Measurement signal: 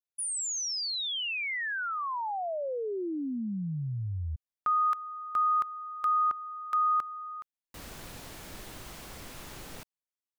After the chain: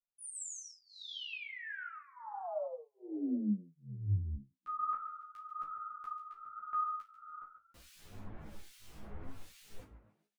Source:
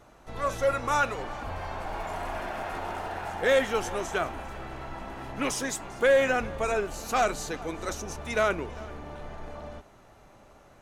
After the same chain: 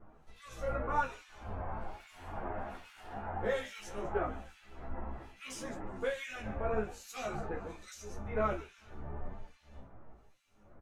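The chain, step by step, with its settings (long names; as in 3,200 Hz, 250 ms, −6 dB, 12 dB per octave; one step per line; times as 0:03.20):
high-shelf EQ 8,900 Hz +3 dB
tuned comb filter 52 Hz, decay 0.24 s, harmonics all, mix 90%
echo with shifted repeats 141 ms, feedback 45%, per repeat +52 Hz, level −13 dB
flanger 0.85 Hz, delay 9.4 ms, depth 9.2 ms, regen +44%
two-band tremolo in antiphase 1.2 Hz, depth 100%, crossover 2,100 Hz
spectral tilt −2 dB per octave
string-ensemble chorus
level +6.5 dB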